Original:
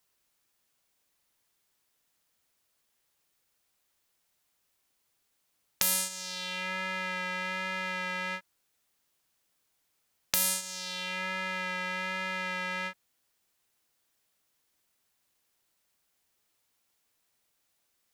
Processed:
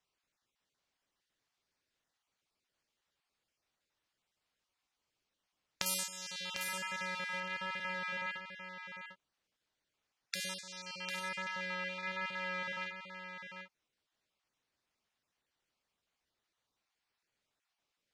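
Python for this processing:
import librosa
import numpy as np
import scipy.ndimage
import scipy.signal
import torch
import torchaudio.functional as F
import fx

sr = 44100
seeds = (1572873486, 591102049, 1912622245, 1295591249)

y = fx.spec_dropout(x, sr, seeds[0], share_pct=23)
y = fx.lowpass(y, sr, hz=fx.steps((0.0, 5200.0), (5.86, 11000.0), (7.4, 4900.0)), slope=12)
y = y + 10.0 ** (-8.0 / 20.0) * np.pad(y, (int(749 * sr / 1000.0), 0))[:len(y)]
y = y * librosa.db_to_amplitude(-4.5)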